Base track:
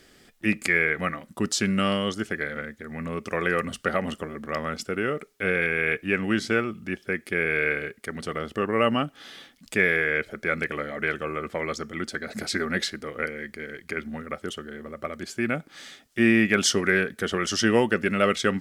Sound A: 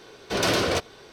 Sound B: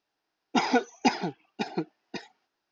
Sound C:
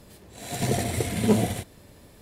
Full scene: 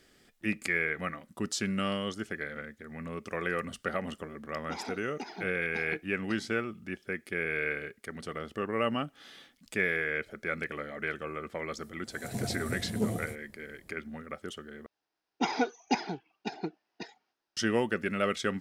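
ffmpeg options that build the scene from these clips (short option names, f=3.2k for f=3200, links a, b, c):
-filter_complex "[2:a]asplit=2[a][b];[0:a]volume=-7.5dB[c];[a]acompressor=threshold=-24dB:ratio=6:attack=3.2:release=140:knee=1:detection=peak[d];[3:a]equalizer=f=2.5k:w=0.54:g=-11.5[e];[c]asplit=2[f][g];[f]atrim=end=14.864[h];[b]atrim=end=2.71,asetpts=PTS-STARTPTS,volume=-5dB[i];[g]atrim=start=17.566[j];[d]atrim=end=2.71,asetpts=PTS-STARTPTS,volume=-10.5dB,afade=t=in:d=0.004:c=hsin,afade=t=out:st=2.706:d=0.004:c=hsin,adelay=4150[k];[e]atrim=end=2.21,asetpts=PTS-STARTPTS,volume=-9dB,afade=t=in:d=0.004:c=hsin,afade=t=out:st=2.206:d=0.004:c=hsin,adelay=11720[l];[h][i]acrossfade=d=0.004:c1=hsin:c2=hsin[m];[m][j]acrossfade=d=0.004:c1=hsin:c2=hsin[n];[n][k][l]amix=inputs=3:normalize=0"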